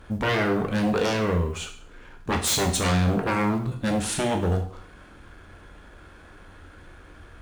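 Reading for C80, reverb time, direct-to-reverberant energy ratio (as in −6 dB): 12.5 dB, 0.55 s, 3.0 dB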